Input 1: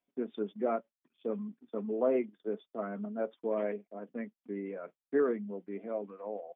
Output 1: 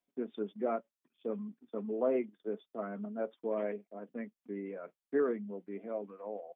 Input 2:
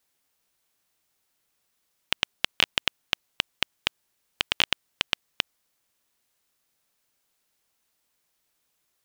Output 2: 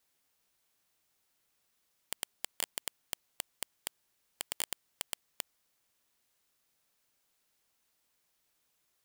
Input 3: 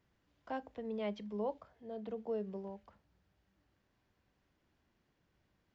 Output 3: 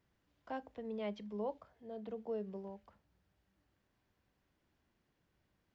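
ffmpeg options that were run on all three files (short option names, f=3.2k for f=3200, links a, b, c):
-af "aeval=exprs='(mod(6.31*val(0)+1,2)-1)/6.31':c=same,volume=-2dB"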